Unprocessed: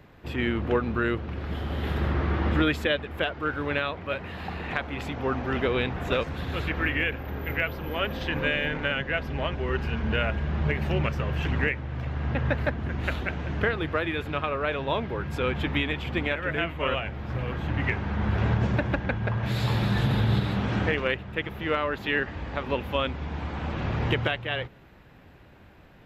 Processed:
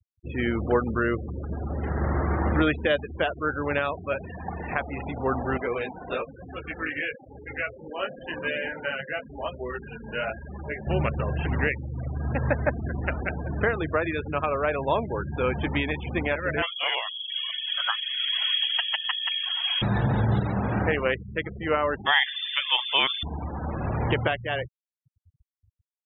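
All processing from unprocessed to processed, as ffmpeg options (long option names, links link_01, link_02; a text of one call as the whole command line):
ffmpeg -i in.wav -filter_complex "[0:a]asettb=1/sr,asplit=3[link_01][link_02][link_03];[link_01]atrim=end=5.574[link_04];[link_02]atrim=start=5.57:end=10.87,asetpts=PTS-STARTPTS,afade=type=in:duration=0.004:curve=qsin,afade=type=out:start_time=5.296:duration=0.004:curve=qsin,lowshelf=frequency=180:gain=-12,flanger=delay=15.5:depth=5.5:speed=1[link_05];[link_03]atrim=start=10.866[link_06];[link_04][link_05]acrossfade=duration=0.004:curve1=hsin:curve2=qsin[link_07];[link_07][link_06]acrossfade=duration=0.004:curve1=qsin:curve2=hsin,asettb=1/sr,asplit=3[link_08][link_09][link_10];[link_08]atrim=end=16.624[link_11];[link_09]atrim=start=16.62:end=19.82,asetpts=PTS-STARTPTS,afade=type=in:duration=0.004:curve=qsin,afade=type=out:start_time=3.196:duration=0.004:curve=qsin,aeval=exprs='val(0)+0.0158*(sin(2*PI*50*n/s)+sin(2*PI*2*50*n/s)/2+sin(2*PI*3*50*n/s)/3+sin(2*PI*4*50*n/s)/4+sin(2*PI*5*50*n/s)/5)':channel_layout=same,lowpass=frequency=2900:width_type=q:width=0.5098,lowpass=frequency=2900:width_type=q:width=0.6013,lowpass=frequency=2900:width_type=q:width=0.9,lowpass=frequency=2900:width_type=q:width=2.563,afreqshift=-3400[link_12];[link_10]atrim=start=19.816[link_13];[link_11][link_12]acrossfade=duration=0.004:curve1=hsin:curve2=qsin[link_14];[link_14][link_13]acrossfade=duration=0.004:curve1=qsin:curve2=hsin,asettb=1/sr,asplit=3[link_15][link_16][link_17];[link_15]atrim=end=22.064[link_18];[link_16]atrim=start=22.06:end=23.23,asetpts=PTS-STARTPTS,afade=type=in:duration=0.004:curve=qsin,afade=type=out:start_time=1.166:duration=0.004:curve=qsin,acontrast=25,lowpass=frequency=3100:width_type=q:width=0.5098,lowpass=frequency=3100:width_type=q:width=0.6013,lowpass=frequency=3100:width_type=q:width=0.9,lowpass=frequency=3100:width_type=q:width=2.563,afreqshift=-3600[link_19];[link_17]atrim=start=23.226[link_20];[link_18][link_19]acrossfade=duration=0.004:curve1=hsin:curve2=qsin[link_21];[link_21][link_20]acrossfade=duration=0.004:curve1=qsin:curve2=hsin,lowpass=3500,afftfilt=real='re*gte(hypot(re,im),0.0282)':imag='im*gte(hypot(re,im),0.0282)':win_size=1024:overlap=0.75,adynamicequalizer=threshold=0.0112:dfrequency=750:dqfactor=1.1:tfrequency=750:tqfactor=1.1:attack=5:release=100:ratio=0.375:range=2.5:mode=boostabove:tftype=bell" out.wav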